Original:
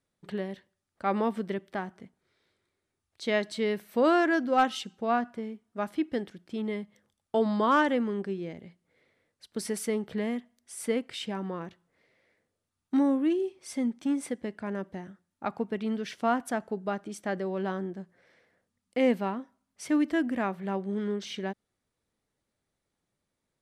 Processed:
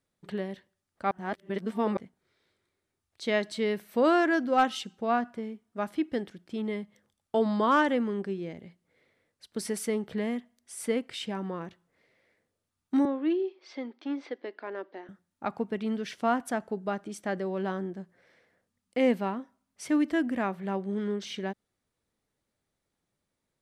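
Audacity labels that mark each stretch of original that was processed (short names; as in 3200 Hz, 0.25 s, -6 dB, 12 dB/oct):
1.110000	1.970000	reverse
13.050000	15.090000	elliptic band-pass 320–4500 Hz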